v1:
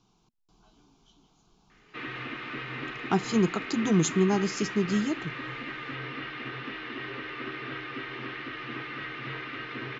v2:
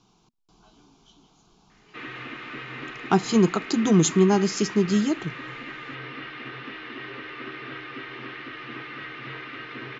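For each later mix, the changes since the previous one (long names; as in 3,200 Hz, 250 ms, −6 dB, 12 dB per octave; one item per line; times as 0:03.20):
speech +6.0 dB
master: add low-shelf EQ 95 Hz −5.5 dB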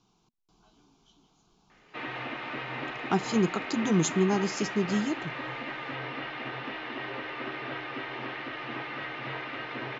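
speech −6.5 dB
background: add flat-topped bell 720 Hz +10 dB 1 octave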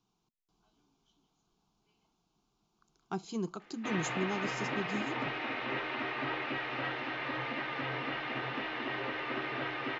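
speech −10.5 dB
background: entry +1.90 s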